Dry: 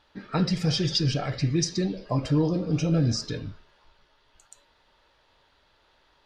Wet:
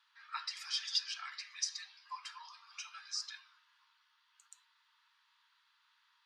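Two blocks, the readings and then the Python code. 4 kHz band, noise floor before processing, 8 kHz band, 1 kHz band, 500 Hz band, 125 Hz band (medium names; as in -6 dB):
-7.0 dB, -65 dBFS, -7.0 dB, -10.0 dB, under -40 dB, under -40 dB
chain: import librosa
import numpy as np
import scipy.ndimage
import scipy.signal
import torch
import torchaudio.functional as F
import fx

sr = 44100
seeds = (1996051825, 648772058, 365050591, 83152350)

y = scipy.signal.sosfilt(scipy.signal.butter(12, 960.0, 'highpass', fs=sr, output='sos'), x)
y = y * librosa.db_to_amplitude(-7.0)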